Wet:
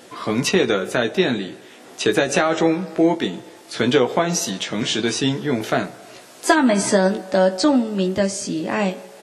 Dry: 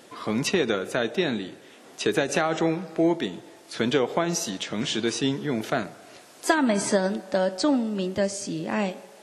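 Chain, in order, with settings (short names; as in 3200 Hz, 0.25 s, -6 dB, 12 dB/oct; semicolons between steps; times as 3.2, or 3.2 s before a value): doubler 16 ms -6 dB; gain +5 dB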